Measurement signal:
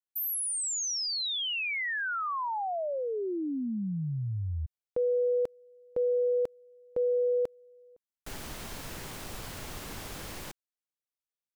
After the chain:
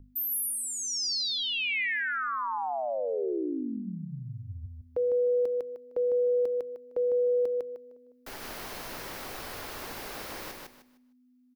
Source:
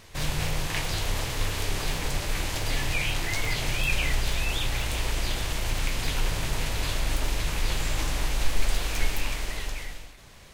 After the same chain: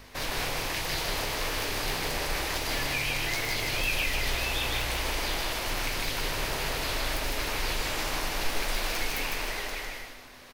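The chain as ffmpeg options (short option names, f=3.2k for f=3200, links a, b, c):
-filter_complex "[0:a]bass=f=250:g=-11,treble=f=4k:g=-11,asplit=2[a][b];[b]aecho=0:1:153|306|459|612:0.708|0.177|0.0442|0.0111[c];[a][c]amix=inputs=2:normalize=0,aeval=exprs='val(0)+0.00355*(sin(2*PI*50*n/s)+sin(2*PI*2*50*n/s)/2+sin(2*PI*3*50*n/s)/3+sin(2*PI*4*50*n/s)/4+sin(2*PI*5*50*n/s)/5)':c=same,bandreject=f=50:t=h:w=6,bandreject=f=100:t=h:w=6,bandreject=f=150:t=h:w=6,bandreject=f=200:t=h:w=6,acrossover=split=350|2800[d][e][f];[e]alimiter=level_in=4dB:limit=-24dB:level=0:latency=1:release=311,volume=-4dB[g];[d][g][f]amix=inputs=3:normalize=0,aexciter=amount=1.7:drive=5.9:freq=4.4k,volume=2.5dB"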